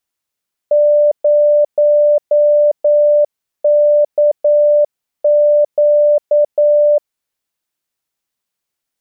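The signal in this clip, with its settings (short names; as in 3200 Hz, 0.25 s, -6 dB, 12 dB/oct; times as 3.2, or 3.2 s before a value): Morse "0KQ" 9 wpm 591 Hz -7 dBFS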